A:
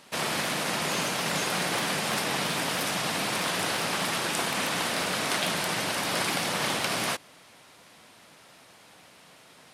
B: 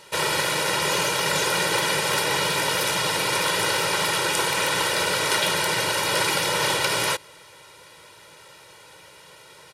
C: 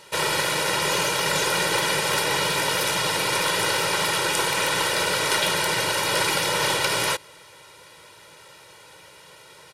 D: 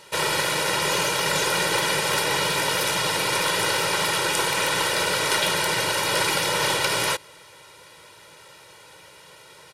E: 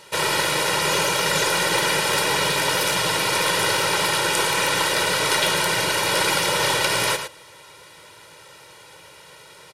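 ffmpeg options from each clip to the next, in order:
ffmpeg -i in.wav -af "aecho=1:1:2.1:0.95,volume=3dB" out.wav
ffmpeg -i in.wav -af "aeval=exprs='0.562*(cos(1*acos(clip(val(0)/0.562,-1,1)))-cos(1*PI/2))+0.00708*(cos(6*acos(clip(val(0)/0.562,-1,1)))-cos(6*PI/2))':channel_layout=same" out.wav
ffmpeg -i in.wav -af anull out.wav
ffmpeg -i in.wav -af "aecho=1:1:111:0.376,volume=1.5dB" out.wav

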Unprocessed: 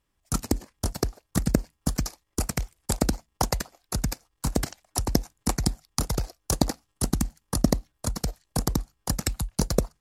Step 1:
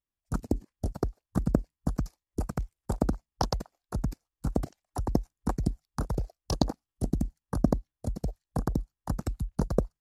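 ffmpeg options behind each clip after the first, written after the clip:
ffmpeg -i in.wav -af "afwtdn=0.02,volume=-2.5dB" out.wav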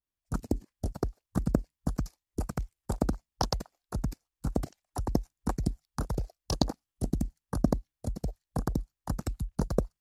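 ffmpeg -i in.wav -af "adynamicequalizer=threshold=0.00631:dfrequency=1600:dqfactor=0.7:tfrequency=1600:tqfactor=0.7:attack=5:release=100:ratio=0.375:range=2:mode=boostabove:tftype=highshelf,volume=-1.5dB" out.wav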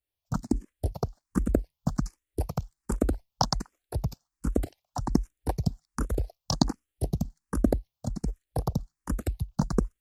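ffmpeg -i in.wav -filter_complex "[0:a]asplit=2[link_01][link_02];[link_02]afreqshift=1.3[link_03];[link_01][link_03]amix=inputs=2:normalize=1,volume=5.5dB" out.wav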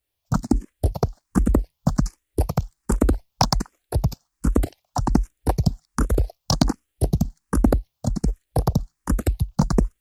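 ffmpeg -i in.wav -af "asoftclip=type=tanh:threshold=-15dB,volume=9dB" out.wav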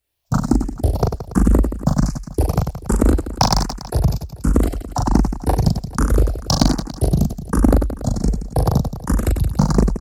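ffmpeg -i in.wav -af "aecho=1:1:40|96|174.4|284.2|437.8:0.631|0.398|0.251|0.158|0.1,volume=2.5dB" out.wav

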